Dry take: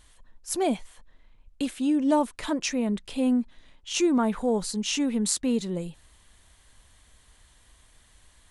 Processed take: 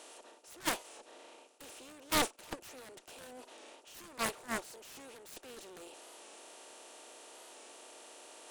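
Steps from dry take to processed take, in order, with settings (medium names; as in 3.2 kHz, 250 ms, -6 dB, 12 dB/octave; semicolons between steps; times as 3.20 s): spectral levelling over time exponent 0.4; high-pass 380 Hz 24 dB/octave; Chebyshev shaper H 5 -42 dB, 7 -12 dB, 8 -36 dB, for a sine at -6 dBFS; reverse; upward compressor, threshold -25 dBFS; reverse; wavefolder -16.5 dBFS; gate -27 dBFS, range -21 dB; warped record 45 rpm, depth 100 cents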